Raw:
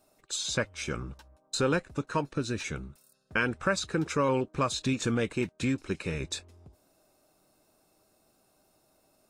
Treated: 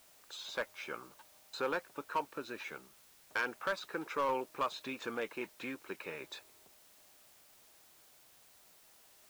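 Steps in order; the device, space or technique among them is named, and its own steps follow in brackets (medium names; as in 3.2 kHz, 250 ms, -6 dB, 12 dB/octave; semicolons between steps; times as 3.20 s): drive-through speaker (band-pass 460–3000 Hz; peaking EQ 930 Hz +5 dB 0.52 oct; hard clipper -21.5 dBFS, distortion -15 dB; white noise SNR 21 dB); trim -5 dB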